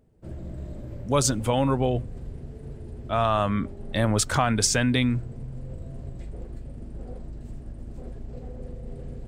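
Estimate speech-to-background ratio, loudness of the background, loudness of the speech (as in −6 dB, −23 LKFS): 15.5 dB, −40.0 LKFS, −24.5 LKFS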